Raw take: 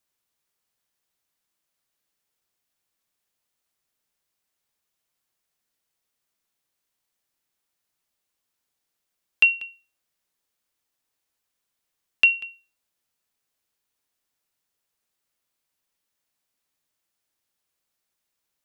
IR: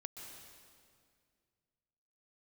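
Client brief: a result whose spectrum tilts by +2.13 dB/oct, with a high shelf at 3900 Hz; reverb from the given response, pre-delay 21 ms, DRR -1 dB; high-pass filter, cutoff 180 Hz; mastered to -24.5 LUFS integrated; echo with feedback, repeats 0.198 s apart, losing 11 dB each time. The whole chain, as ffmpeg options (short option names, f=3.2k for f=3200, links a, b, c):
-filter_complex "[0:a]highpass=180,highshelf=f=3.9k:g=8.5,aecho=1:1:198|396|594:0.282|0.0789|0.0221,asplit=2[a][b];[1:a]atrim=start_sample=2205,adelay=21[c];[b][c]afir=irnorm=-1:irlink=0,volume=4.5dB[d];[a][d]amix=inputs=2:normalize=0,volume=-4.5dB"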